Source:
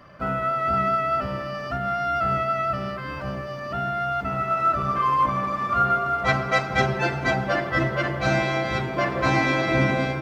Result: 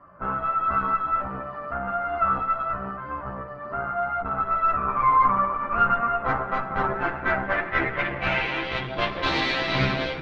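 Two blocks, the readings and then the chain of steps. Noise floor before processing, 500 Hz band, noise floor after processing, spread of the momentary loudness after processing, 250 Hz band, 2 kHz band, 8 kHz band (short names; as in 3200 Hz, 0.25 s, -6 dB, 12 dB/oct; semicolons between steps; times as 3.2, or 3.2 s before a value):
-32 dBFS, -4.5 dB, -36 dBFS, 10 LU, -5.0 dB, -1.5 dB, n/a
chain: added harmonics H 6 -12 dB, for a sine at -7 dBFS; chorus voices 6, 0.39 Hz, delay 14 ms, depth 3.6 ms; low-pass sweep 1200 Hz -> 3900 Hz, 6.72–9.24; gain -3 dB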